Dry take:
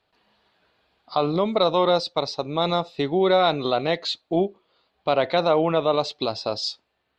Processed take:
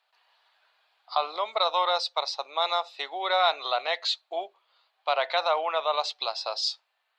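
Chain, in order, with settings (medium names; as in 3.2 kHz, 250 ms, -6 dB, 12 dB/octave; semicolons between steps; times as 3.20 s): high-pass 720 Hz 24 dB/octave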